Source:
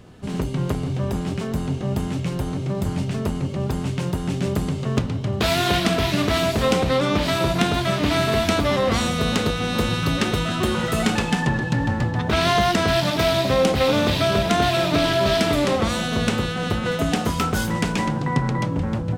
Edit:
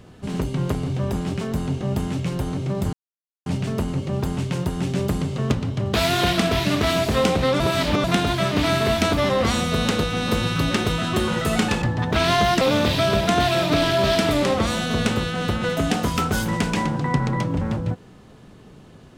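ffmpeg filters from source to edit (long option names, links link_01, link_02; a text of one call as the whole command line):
ffmpeg -i in.wav -filter_complex "[0:a]asplit=6[link_01][link_02][link_03][link_04][link_05][link_06];[link_01]atrim=end=2.93,asetpts=PTS-STARTPTS,afade=type=out:start_time=2.926:duration=0.004:curve=hsin,apad=pad_dur=0.53[link_07];[link_02]atrim=start=2.93:end=7.072,asetpts=PTS-STARTPTS,afade=type=in:duration=0.004:curve=hsin[link_08];[link_03]atrim=start=7.068:end=7.512,asetpts=PTS-STARTPTS,areverse[link_09];[link_04]atrim=start=7.508:end=11.292[link_10];[link_05]atrim=start=11.988:end=12.782[link_11];[link_06]atrim=start=13.828[link_12];[link_07][link_08]concat=n=2:v=0:a=1[link_13];[link_13][link_09]acrossfade=duration=0.004:curve1=hsin:curve2=hsin[link_14];[link_14][link_10]acrossfade=duration=0.004:curve1=hsin:curve2=hsin[link_15];[link_15][link_11]acrossfade=duration=0.004:curve1=hsin:curve2=hsin[link_16];[link_16][link_12]acrossfade=duration=0.004:curve1=hsin:curve2=hsin" out.wav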